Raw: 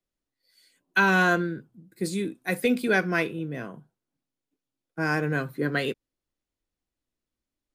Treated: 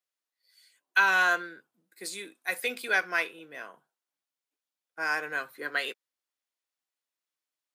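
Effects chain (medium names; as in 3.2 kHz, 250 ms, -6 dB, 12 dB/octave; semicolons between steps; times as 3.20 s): high-pass 840 Hz 12 dB/octave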